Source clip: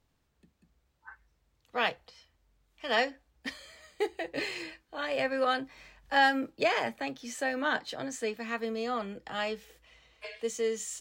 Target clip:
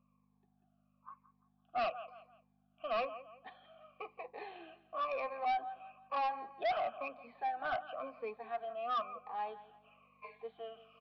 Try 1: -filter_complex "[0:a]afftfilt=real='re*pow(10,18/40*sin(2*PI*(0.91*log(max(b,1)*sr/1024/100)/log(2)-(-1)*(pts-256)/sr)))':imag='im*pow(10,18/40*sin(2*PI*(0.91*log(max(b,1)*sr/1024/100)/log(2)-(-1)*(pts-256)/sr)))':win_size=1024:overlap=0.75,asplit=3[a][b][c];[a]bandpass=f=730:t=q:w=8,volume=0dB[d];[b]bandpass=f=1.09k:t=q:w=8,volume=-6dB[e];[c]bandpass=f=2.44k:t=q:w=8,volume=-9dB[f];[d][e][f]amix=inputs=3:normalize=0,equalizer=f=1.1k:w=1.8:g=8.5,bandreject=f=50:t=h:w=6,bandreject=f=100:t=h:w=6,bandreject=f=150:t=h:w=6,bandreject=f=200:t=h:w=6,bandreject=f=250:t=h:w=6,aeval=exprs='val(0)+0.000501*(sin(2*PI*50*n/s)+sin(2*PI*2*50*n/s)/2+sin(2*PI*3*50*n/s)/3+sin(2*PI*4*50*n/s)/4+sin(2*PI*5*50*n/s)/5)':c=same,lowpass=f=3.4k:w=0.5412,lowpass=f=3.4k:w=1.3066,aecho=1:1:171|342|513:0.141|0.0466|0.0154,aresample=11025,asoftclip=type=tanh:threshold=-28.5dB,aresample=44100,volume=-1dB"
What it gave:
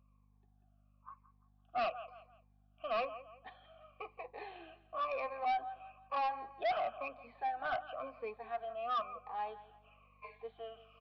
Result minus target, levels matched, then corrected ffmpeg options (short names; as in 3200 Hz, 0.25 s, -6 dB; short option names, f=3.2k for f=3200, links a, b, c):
125 Hz band +3.0 dB
-filter_complex "[0:a]afftfilt=real='re*pow(10,18/40*sin(2*PI*(0.91*log(max(b,1)*sr/1024/100)/log(2)-(-1)*(pts-256)/sr)))':imag='im*pow(10,18/40*sin(2*PI*(0.91*log(max(b,1)*sr/1024/100)/log(2)-(-1)*(pts-256)/sr)))':win_size=1024:overlap=0.75,asplit=3[a][b][c];[a]bandpass=f=730:t=q:w=8,volume=0dB[d];[b]bandpass=f=1.09k:t=q:w=8,volume=-6dB[e];[c]bandpass=f=2.44k:t=q:w=8,volume=-9dB[f];[d][e][f]amix=inputs=3:normalize=0,equalizer=f=1.1k:w=1.8:g=8.5,bandreject=f=50:t=h:w=6,bandreject=f=100:t=h:w=6,bandreject=f=150:t=h:w=6,bandreject=f=200:t=h:w=6,bandreject=f=250:t=h:w=6,aeval=exprs='val(0)+0.000501*(sin(2*PI*50*n/s)+sin(2*PI*2*50*n/s)/2+sin(2*PI*3*50*n/s)/3+sin(2*PI*4*50*n/s)/4+sin(2*PI*5*50*n/s)/5)':c=same,lowpass=f=3.4k:w=0.5412,lowpass=f=3.4k:w=1.3066,lowshelf=f=120:t=q:w=1.5:g=-13.5,aecho=1:1:171|342|513:0.141|0.0466|0.0154,aresample=11025,asoftclip=type=tanh:threshold=-28.5dB,aresample=44100,volume=-1dB"